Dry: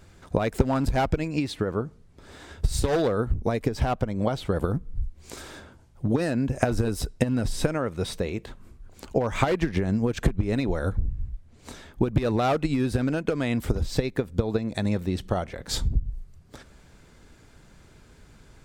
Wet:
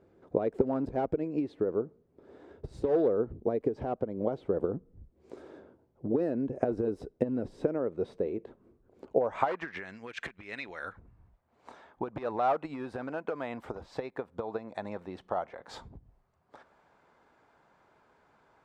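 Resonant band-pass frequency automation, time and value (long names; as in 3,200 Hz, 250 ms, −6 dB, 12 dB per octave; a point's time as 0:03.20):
resonant band-pass, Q 1.7
0:09.05 410 Hz
0:09.89 2,100 Hz
0:10.77 2,100 Hz
0:11.20 880 Hz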